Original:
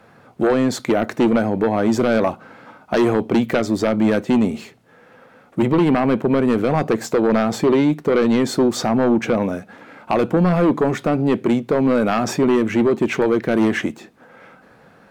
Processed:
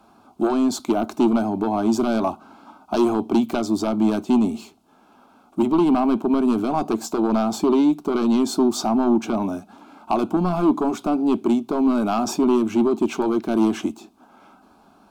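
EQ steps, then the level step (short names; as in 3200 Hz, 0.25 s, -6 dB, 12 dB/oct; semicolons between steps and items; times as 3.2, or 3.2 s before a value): fixed phaser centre 500 Hz, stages 6; 0.0 dB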